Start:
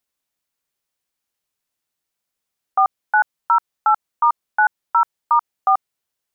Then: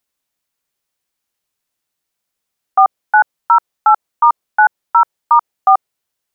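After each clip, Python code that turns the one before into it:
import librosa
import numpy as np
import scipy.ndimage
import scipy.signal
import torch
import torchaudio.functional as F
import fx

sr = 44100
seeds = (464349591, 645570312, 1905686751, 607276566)

y = fx.dynamic_eq(x, sr, hz=540.0, q=0.82, threshold_db=-29.0, ratio=4.0, max_db=5)
y = y * 10.0 ** (3.5 / 20.0)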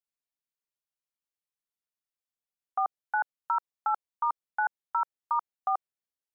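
y = fx.level_steps(x, sr, step_db=18)
y = y * 10.0 ** (-8.0 / 20.0)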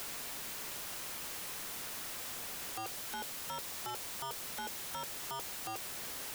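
y = np.sign(x) * np.sqrt(np.mean(np.square(x)))
y = fx.band_squash(y, sr, depth_pct=40)
y = y * 10.0 ** (-4.5 / 20.0)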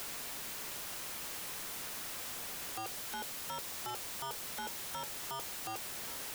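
y = x + 10.0 ** (-15.0 / 20.0) * np.pad(x, (int(1129 * sr / 1000.0), 0))[:len(x)]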